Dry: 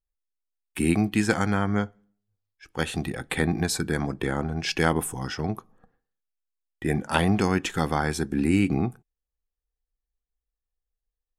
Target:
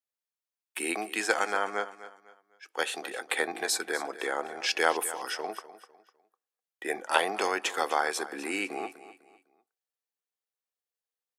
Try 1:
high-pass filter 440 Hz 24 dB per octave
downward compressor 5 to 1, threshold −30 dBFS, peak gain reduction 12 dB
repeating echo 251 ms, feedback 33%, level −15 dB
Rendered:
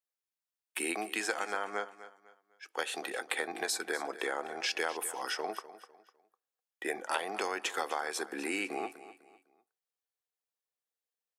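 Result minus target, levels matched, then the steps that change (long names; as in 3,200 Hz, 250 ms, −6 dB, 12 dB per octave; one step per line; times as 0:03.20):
downward compressor: peak gain reduction +12 dB
remove: downward compressor 5 to 1, threshold −30 dBFS, peak gain reduction 12 dB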